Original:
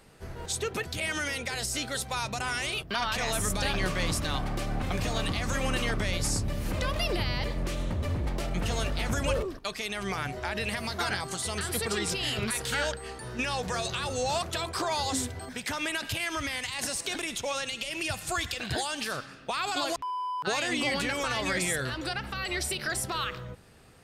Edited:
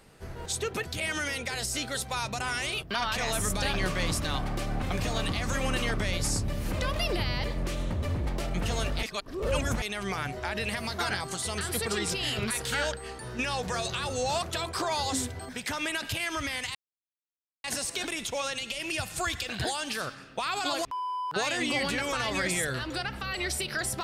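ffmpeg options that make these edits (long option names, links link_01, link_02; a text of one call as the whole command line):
ffmpeg -i in.wav -filter_complex "[0:a]asplit=4[link_01][link_02][link_03][link_04];[link_01]atrim=end=9.032[link_05];[link_02]atrim=start=9.028:end=9.822,asetpts=PTS-STARTPTS,areverse[link_06];[link_03]atrim=start=9.818:end=16.75,asetpts=PTS-STARTPTS,afade=type=out:start_time=6.928:duration=0.004:curve=hsin,apad=pad_dur=0.89[link_07];[link_04]atrim=start=16.75,asetpts=PTS-STARTPTS,afade=type=in:duration=0.004:curve=hsin[link_08];[link_05][link_06]acrossfade=duration=0.004:curve1=hsin:curve2=hsin[link_09];[link_07][link_08]concat=n=2:v=0:a=1[link_10];[link_09][link_10]acrossfade=duration=0.004:curve1=hsin:curve2=hsin" out.wav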